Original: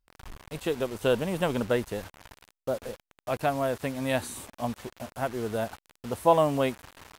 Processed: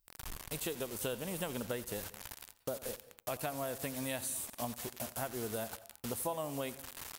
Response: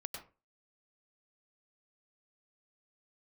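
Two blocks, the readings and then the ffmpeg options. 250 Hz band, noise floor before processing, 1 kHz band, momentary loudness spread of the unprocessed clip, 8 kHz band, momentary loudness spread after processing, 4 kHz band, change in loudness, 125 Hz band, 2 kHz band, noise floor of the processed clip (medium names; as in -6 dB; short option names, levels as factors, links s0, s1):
-10.5 dB, under -85 dBFS, -13.0 dB, 17 LU, +3.0 dB, 7 LU, -5.5 dB, -10.5 dB, -10.5 dB, -9.0 dB, -67 dBFS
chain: -filter_complex "[0:a]aemphasis=mode=production:type=75kf,acompressor=threshold=0.0224:ratio=6,asplit=2[s0][s1];[1:a]atrim=start_sample=2205,adelay=86[s2];[s1][s2]afir=irnorm=-1:irlink=0,volume=0.211[s3];[s0][s3]amix=inputs=2:normalize=0,volume=0.75"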